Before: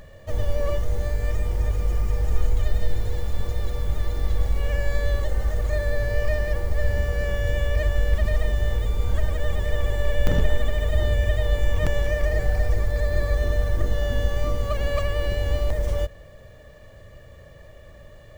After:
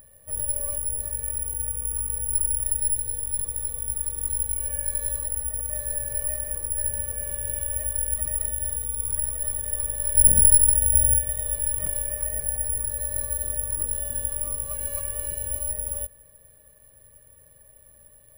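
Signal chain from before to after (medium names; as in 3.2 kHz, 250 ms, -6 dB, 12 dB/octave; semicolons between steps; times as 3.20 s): 10.15–11.19 s: bass shelf 320 Hz +9 dB; careless resampling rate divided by 4×, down filtered, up zero stuff; trim -14 dB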